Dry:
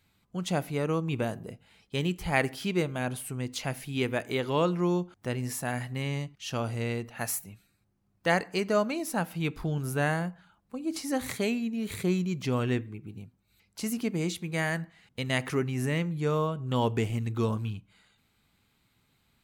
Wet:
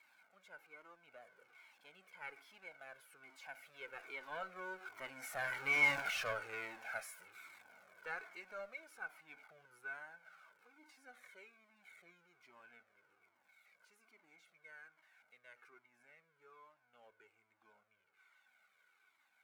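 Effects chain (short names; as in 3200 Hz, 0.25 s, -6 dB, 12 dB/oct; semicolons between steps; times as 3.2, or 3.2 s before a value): zero-crossing step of -33 dBFS; Doppler pass-by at 5.89, 17 m/s, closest 1.2 m; Chebyshev high-pass 680 Hz, order 2; high shelf 2600 Hz -9.5 dB; tube stage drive 46 dB, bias 0.35; small resonant body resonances 1500/2200 Hz, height 18 dB, ringing for 30 ms; cascading flanger falling 1.2 Hz; gain +15.5 dB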